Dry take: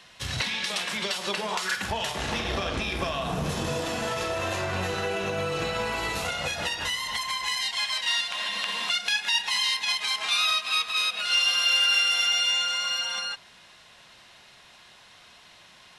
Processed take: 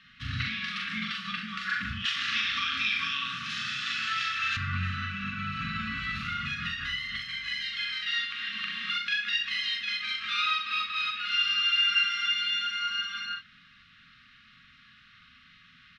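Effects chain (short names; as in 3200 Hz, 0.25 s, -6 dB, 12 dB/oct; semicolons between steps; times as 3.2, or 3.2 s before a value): air absorption 310 m; notches 50/100/150/200 Hz; early reflections 41 ms -4 dB, 65 ms -9 dB; FFT band-reject 270–1100 Hz; 2.05–4.57 weighting filter ITU-R 468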